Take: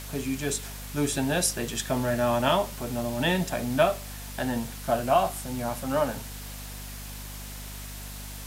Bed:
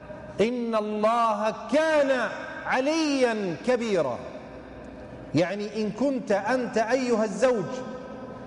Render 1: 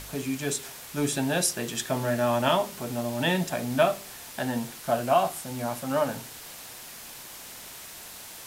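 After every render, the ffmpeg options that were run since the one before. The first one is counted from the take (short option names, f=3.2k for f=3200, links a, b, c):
-af "bandreject=f=50:t=h:w=4,bandreject=f=100:t=h:w=4,bandreject=f=150:t=h:w=4,bandreject=f=200:t=h:w=4,bandreject=f=250:t=h:w=4,bandreject=f=300:t=h:w=4,bandreject=f=350:t=h:w=4,bandreject=f=400:t=h:w=4"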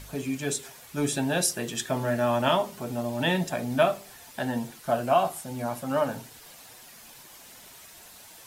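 -af "afftdn=nr=8:nf=-44"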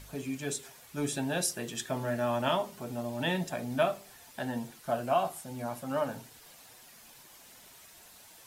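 -af "volume=-5.5dB"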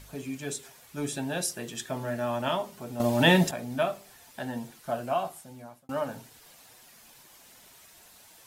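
-filter_complex "[0:a]asplit=4[a][b][c][d];[a]atrim=end=3.002[e];[b]atrim=start=2.998:end=3.512,asetpts=PTS-STARTPTS,volume=11dB[f];[c]atrim=start=3.508:end=5.89,asetpts=PTS-STARTPTS,afade=t=out:st=1.342:d=1.04:c=qsin[g];[d]atrim=start=5.89,asetpts=PTS-STARTPTS,afade=t=in:d=0.004:c=hsin[h];[e][f]acrossfade=d=0.004:c1=hsin:c2=hsin[i];[g][h]concat=n=2:v=0:a=1[j];[i][j]acrossfade=d=0.004:c1=hsin:c2=hsin"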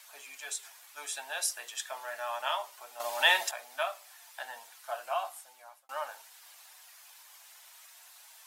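-af "highpass=f=780:w=0.5412,highpass=f=780:w=1.3066"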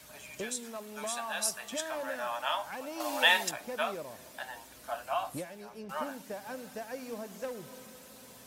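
-filter_complex "[1:a]volume=-17dB[a];[0:a][a]amix=inputs=2:normalize=0"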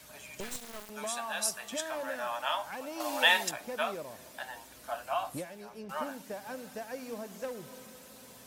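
-filter_complex "[0:a]asettb=1/sr,asplit=3[a][b][c];[a]atrim=end=0.404[d];[b]atrim=start=0.4:end=0.9,asetpts=PTS-STARTPTS,afade=t=in:d=0.004:c=qsin,afade=t=out:st=0.496:d=0.004:c=qsin,acrusher=bits=4:dc=4:mix=0:aa=0.000001[e];[c]atrim=start=0.896[f];[d][e]acrossfade=d=0.004:c1=hsin:c2=qsin[g];[g][f]acrossfade=d=0.004:c1=qsin:c2=hsin"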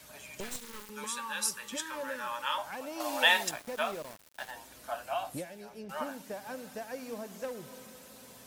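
-filter_complex "[0:a]asettb=1/sr,asplit=3[a][b][c];[a]atrim=end=0.594[d];[b]atrim=start=0.59:end=2.58,asetpts=PTS-STARTPTS,afade=t=in:d=0.004:c=qsin,afade=t=out:st=1.986:d=0.004:c=qsin,asuperstop=centerf=700:order=12:qfactor=3[e];[c]atrim=start=2.576[f];[d][e]acrossfade=d=0.004:c1=hsin:c2=qsin[g];[g][f]acrossfade=d=0.004:c1=qsin:c2=hsin,asettb=1/sr,asplit=3[h][i][j];[h]atrim=end=3.264[k];[i]atrim=start=3.26:end=4.51,asetpts=PTS-STARTPTS,afade=t=in:d=0.004:c=qsin,afade=t=out:st=1.246:d=0.004:c=qsin,aeval=exprs='val(0)*gte(abs(val(0)),0.00668)':c=same[l];[j]atrim=start=4.506[m];[k][l]acrossfade=d=0.004:c1=hsin:c2=qsin[n];[n][m]acrossfade=d=0.004:c1=qsin:c2=hsin,asettb=1/sr,asplit=3[o][p][q];[o]atrim=end=5.074[r];[p]atrim=start=5.07:end=6,asetpts=PTS-STARTPTS,afade=t=in:d=0.004:c=qsin,afade=t=out:st=0.926:d=0.004:c=qsin,equalizer=f=1.1k:w=3.5:g=-7[s];[q]atrim=start=5.996[t];[r][s]acrossfade=d=0.004:c1=hsin:c2=qsin[u];[u][t]acrossfade=d=0.004:c1=qsin:c2=hsin"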